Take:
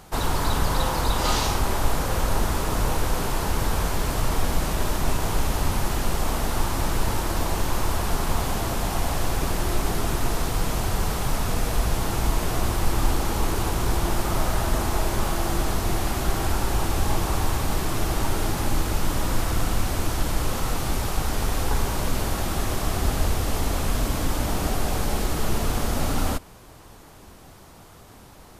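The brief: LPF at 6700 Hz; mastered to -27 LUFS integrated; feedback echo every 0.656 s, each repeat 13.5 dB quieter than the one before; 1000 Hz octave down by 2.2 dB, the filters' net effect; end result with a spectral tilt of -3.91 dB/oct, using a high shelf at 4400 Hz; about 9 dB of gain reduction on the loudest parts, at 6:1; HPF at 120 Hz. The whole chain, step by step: HPF 120 Hz; LPF 6700 Hz; bell 1000 Hz -3 dB; high shelf 4400 Hz +3.5 dB; compressor 6:1, threshold -33 dBFS; feedback echo 0.656 s, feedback 21%, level -13.5 dB; gain +8.5 dB

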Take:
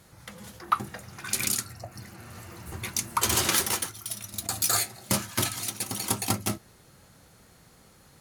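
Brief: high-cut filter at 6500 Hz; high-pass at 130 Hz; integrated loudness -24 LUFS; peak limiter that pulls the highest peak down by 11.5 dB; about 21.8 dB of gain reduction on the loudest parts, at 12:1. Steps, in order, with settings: HPF 130 Hz; LPF 6500 Hz; compressor 12:1, threshold -40 dBFS; gain +23 dB; limiter -11.5 dBFS

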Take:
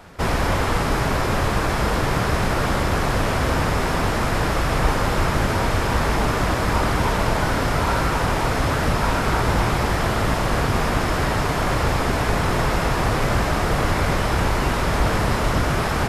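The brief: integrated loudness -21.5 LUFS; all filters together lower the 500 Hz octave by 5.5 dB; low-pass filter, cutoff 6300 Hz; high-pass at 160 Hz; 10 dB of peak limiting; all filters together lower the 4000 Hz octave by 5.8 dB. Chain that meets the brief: HPF 160 Hz; LPF 6300 Hz; bell 500 Hz -7 dB; bell 4000 Hz -7 dB; gain +9 dB; limiter -13 dBFS

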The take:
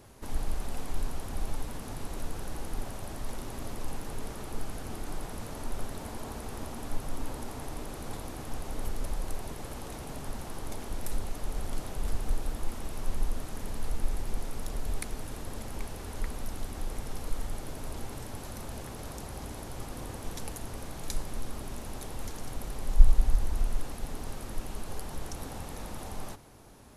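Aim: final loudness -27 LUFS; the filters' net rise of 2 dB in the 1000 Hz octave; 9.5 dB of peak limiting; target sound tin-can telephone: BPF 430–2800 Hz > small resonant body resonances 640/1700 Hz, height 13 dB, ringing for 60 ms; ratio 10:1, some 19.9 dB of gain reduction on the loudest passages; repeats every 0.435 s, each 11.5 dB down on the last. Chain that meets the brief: bell 1000 Hz +3 dB; compressor 10:1, threshold -29 dBFS; limiter -28.5 dBFS; BPF 430–2800 Hz; feedback echo 0.435 s, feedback 27%, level -11.5 dB; small resonant body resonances 640/1700 Hz, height 13 dB, ringing for 60 ms; gain +17.5 dB

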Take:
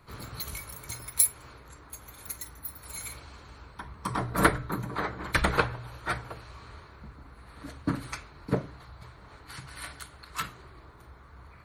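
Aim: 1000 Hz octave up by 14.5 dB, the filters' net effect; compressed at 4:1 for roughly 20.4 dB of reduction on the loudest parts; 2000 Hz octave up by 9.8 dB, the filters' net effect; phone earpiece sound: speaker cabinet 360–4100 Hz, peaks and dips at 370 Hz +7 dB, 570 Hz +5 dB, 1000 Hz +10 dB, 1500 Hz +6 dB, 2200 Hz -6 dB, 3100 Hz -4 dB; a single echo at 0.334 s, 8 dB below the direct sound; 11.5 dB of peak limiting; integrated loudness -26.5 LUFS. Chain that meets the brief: bell 1000 Hz +8 dB; bell 2000 Hz +4.5 dB; compressor 4:1, threshold -36 dBFS; limiter -30.5 dBFS; speaker cabinet 360–4100 Hz, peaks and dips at 370 Hz +7 dB, 570 Hz +5 dB, 1000 Hz +10 dB, 1500 Hz +6 dB, 2200 Hz -6 dB, 3100 Hz -4 dB; echo 0.334 s -8 dB; gain +12 dB

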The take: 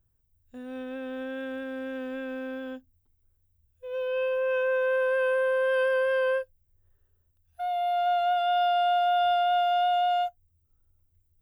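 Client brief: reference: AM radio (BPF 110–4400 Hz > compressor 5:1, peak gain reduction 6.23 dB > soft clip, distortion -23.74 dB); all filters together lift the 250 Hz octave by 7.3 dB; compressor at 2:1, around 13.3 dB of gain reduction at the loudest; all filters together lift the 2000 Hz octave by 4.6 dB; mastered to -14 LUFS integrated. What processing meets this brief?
bell 250 Hz +7.5 dB; bell 2000 Hz +7 dB; compressor 2:1, threshold -46 dBFS; BPF 110–4400 Hz; compressor 5:1, threshold -40 dBFS; soft clip -36.5 dBFS; gain +30 dB

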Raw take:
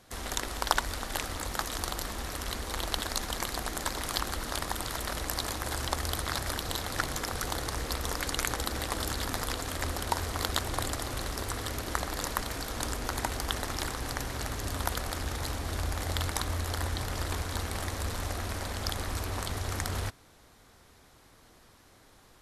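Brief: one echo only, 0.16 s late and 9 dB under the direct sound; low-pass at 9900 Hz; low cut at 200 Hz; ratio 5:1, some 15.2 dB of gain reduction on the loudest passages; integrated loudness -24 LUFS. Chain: HPF 200 Hz; LPF 9900 Hz; compressor 5:1, threshold -39 dBFS; echo 0.16 s -9 dB; gain +17.5 dB

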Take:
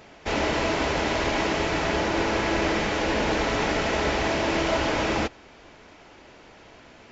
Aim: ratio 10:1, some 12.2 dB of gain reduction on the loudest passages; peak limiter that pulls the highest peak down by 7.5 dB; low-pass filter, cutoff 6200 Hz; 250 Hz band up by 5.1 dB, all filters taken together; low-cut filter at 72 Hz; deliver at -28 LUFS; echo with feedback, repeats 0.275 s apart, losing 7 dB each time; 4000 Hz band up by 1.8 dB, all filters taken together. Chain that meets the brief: HPF 72 Hz; LPF 6200 Hz; bell 250 Hz +7 dB; bell 4000 Hz +3 dB; compressor 10:1, threshold -31 dBFS; limiter -28.5 dBFS; feedback echo 0.275 s, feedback 45%, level -7 dB; gain +9.5 dB

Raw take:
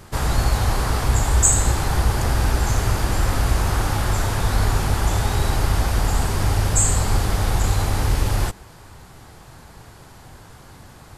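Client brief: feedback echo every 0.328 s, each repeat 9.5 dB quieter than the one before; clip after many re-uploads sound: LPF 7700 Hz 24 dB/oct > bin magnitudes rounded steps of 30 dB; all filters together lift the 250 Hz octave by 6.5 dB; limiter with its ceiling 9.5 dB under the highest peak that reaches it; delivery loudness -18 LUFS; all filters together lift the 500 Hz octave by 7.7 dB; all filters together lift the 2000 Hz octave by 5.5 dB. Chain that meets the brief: bell 250 Hz +6.5 dB; bell 500 Hz +7.5 dB; bell 2000 Hz +6.5 dB; limiter -10.5 dBFS; LPF 7700 Hz 24 dB/oct; feedback echo 0.328 s, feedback 33%, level -9.5 dB; bin magnitudes rounded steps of 30 dB; gain +3 dB

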